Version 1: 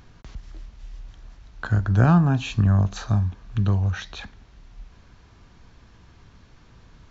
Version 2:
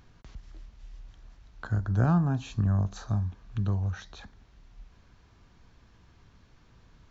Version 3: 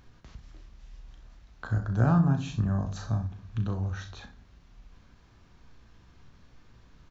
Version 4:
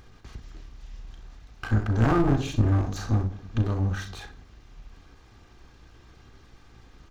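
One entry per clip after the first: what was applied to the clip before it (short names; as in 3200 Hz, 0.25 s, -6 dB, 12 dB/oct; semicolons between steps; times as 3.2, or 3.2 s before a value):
dynamic EQ 2600 Hz, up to -8 dB, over -50 dBFS, Q 1.3; gain -7 dB
early reflections 36 ms -8.5 dB, 64 ms -13 dB; on a send at -11 dB: reverb RT60 0.55 s, pre-delay 4 ms; on the sum: ending taper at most 260 dB/s
minimum comb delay 2.5 ms; gain +6.5 dB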